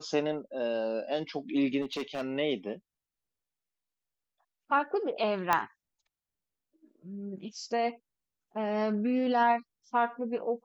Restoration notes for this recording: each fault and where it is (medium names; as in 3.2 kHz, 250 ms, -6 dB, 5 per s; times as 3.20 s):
1.81–2.22 s: clipped -29.5 dBFS
5.53 s: pop -11 dBFS